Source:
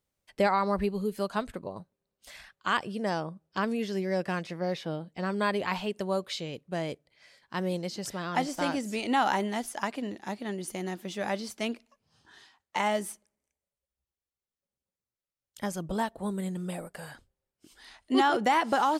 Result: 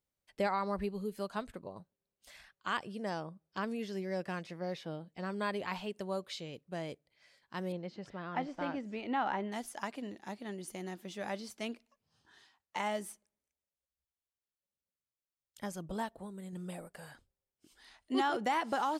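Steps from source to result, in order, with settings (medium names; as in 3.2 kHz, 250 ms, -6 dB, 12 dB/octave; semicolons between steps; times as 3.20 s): 7.72–9.52 s: low-pass 2.5 kHz 12 dB/octave; 16.09–16.53 s: compression, threshold -35 dBFS, peak gain reduction 7.5 dB; trim -7.5 dB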